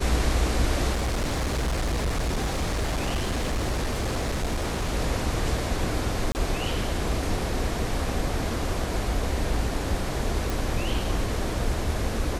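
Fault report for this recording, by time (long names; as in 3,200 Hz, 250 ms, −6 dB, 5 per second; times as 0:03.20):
0:00.92–0:04.89: clipping −22.5 dBFS
0:06.32–0:06.35: drop-out 29 ms
0:10.50: click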